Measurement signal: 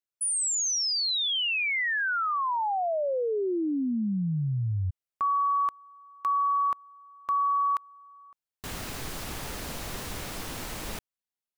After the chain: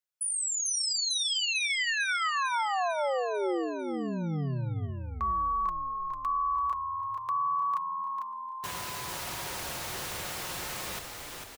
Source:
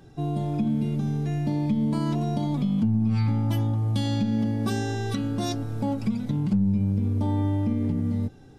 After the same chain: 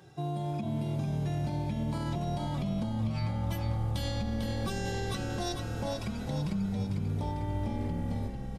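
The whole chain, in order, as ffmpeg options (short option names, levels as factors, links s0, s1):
-filter_complex "[0:a]highpass=f=74:w=0.5412,highpass=f=74:w=1.3066,equalizer=f=230:w=1:g=-10,aecho=1:1:5.5:0.4,acompressor=threshold=0.0447:ratio=6:attack=0.11:release=238:knee=1:detection=rms,asplit=2[s0][s1];[s1]asplit=8[s2][s3][s4][s5][s6][s7][s8][s9];[s2]adelay=448,afreqshift=-41,volume=0.531[s10];[s3]adelay=896,afreqshift=-82,volume=0.302[s11];[s4]adelay=1344,afreqshift=-123,volume=0.172[s12];[s5]adelay=1792,afreqshift=-164,volume=0.0989[s13];[s6]adelay=2240,afreqshift=-205,volume=0.0562[s14];[s7]adelay=2688,afreqshift=-246,volume=0.032[s15];[s8]adelay=3136,afreqshift=-287,volume=0.0182[s16];[s9]adelay=3584,afreqshift=-328,volume=0.0104[s17];[s10][s11][s12][s13][s14][s15][s16][s17]amix=inputs=8:normalize=0[s18];[s0][s18]amix=inputs=2:normalize=0"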